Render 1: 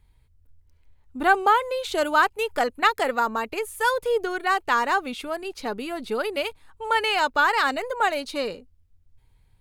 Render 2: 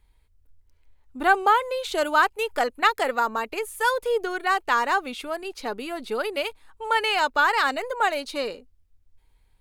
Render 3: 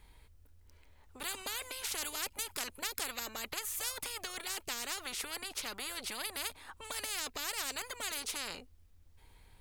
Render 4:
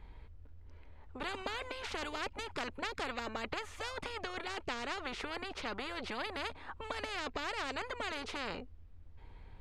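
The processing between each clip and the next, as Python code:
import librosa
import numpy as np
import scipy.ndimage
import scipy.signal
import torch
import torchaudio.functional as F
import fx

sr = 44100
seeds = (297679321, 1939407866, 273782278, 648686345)

y1 = fx.peak_eq(x, sr, hz=120.0, db=-13.5, octaves=1.1)
y2 = fx.spectral_comp(y1, sr, ratio=10.0)
y2 = F.gain(torch.from_numpy(y2), -6.0).numpy()
y3 = fx.spacing_loss(y2, sr, db_at_10k=32)
y3 = F.gain(torch.from_numpy(y3), 8.0).numpy()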